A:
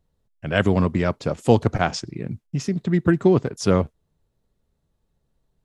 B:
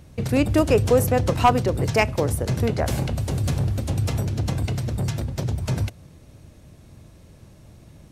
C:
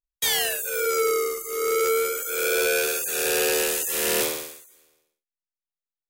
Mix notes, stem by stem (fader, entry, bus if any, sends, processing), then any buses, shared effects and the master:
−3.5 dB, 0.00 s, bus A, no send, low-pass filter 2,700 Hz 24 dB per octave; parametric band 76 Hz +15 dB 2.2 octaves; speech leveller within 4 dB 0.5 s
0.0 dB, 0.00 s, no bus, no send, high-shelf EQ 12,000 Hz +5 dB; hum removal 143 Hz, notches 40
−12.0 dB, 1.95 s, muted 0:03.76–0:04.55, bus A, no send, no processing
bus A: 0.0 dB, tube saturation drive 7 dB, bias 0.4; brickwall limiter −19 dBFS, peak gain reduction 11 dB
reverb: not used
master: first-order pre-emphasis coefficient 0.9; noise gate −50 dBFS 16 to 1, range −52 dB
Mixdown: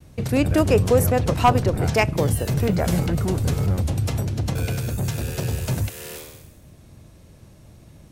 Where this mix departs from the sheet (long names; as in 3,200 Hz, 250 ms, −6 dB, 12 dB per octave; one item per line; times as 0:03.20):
stem A −3.5 dB → +3.0 dB
stem B: missing hum removal 143 Hz, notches 40
master: missing first-order pre-emphasis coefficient 0.9